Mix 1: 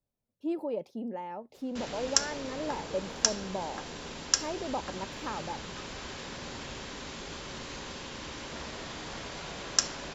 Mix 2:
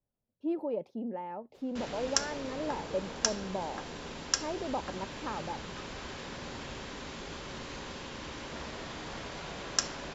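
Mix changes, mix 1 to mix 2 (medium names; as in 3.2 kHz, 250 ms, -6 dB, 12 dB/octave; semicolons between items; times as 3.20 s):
speech: add treble shelf 3.9 kHz -8.5 dB; master: add treble shelf 4.2 kHz -6 dB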